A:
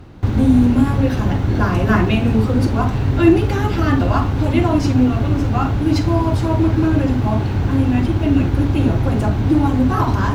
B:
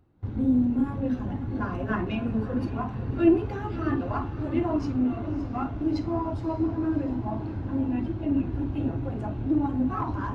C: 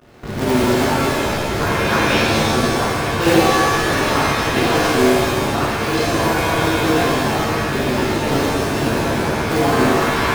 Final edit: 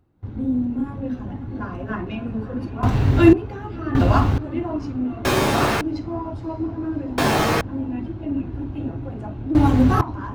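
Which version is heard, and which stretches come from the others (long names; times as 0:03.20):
B
0:02.83–0:03.33: punch in from A
0:03.95–0:04.38: punch in from A
0:05.25–0:05.81: punch in from C
0:07.18–0:07.61: punch in from C
0:09.55–0:10.01: punch in from A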